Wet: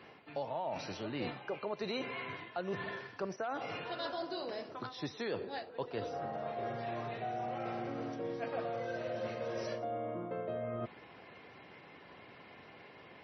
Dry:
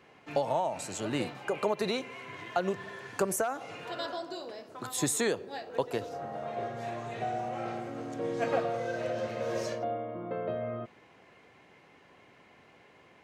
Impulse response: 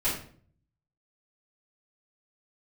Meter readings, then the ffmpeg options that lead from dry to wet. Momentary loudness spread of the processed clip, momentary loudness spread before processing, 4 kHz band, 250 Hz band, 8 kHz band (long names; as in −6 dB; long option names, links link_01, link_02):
16 LU, 9 LU, −4.5 dB, −5.5 dB, below −20 dB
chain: -af "highpass=frequency=56:width=0.5412,highpass=frequency=56:width=1.3066,areverse,acompressor=threshold=-40dB:ratio=5,areverse,volume=4dB" -ar 24000 -c:a libmp3lame -b:a 24k